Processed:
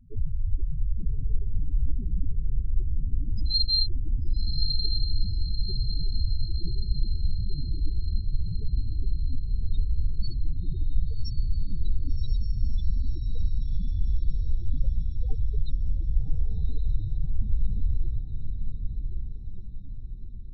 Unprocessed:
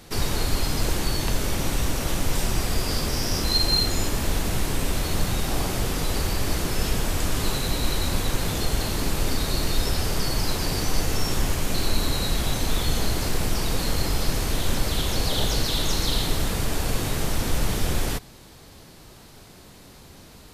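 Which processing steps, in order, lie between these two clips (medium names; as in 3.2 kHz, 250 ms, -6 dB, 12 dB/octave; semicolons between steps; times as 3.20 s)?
loudest bins only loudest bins 4; echo that smears into a reverb 1136 ms, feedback 48%, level -5 dB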